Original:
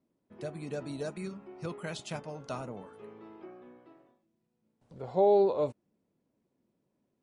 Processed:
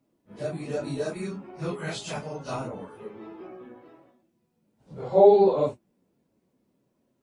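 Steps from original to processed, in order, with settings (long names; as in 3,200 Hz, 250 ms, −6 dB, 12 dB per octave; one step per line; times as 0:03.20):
random phases in long frames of 100 ms
level +6.5 dB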